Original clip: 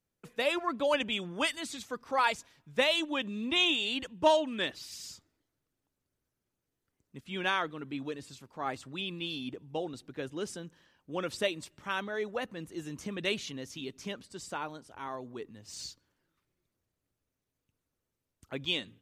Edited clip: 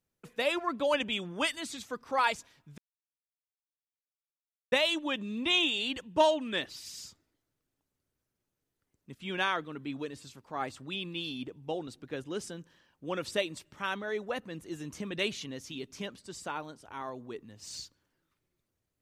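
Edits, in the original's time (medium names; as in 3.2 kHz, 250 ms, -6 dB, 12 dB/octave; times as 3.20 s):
2.78 s: insert silence 1.94 s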